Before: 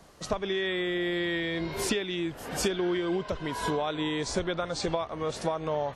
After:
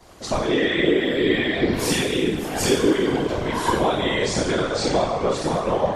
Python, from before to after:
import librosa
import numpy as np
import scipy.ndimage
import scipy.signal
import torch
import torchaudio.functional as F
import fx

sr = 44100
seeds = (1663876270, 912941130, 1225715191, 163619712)

y = fx.rev_double_slope(x, sr, seeds[0], early_s=0.79, late_s=3.1, knee_db=-18, drr_db=-8.0)
y = fx.whisperise(y, sr, seeds[1])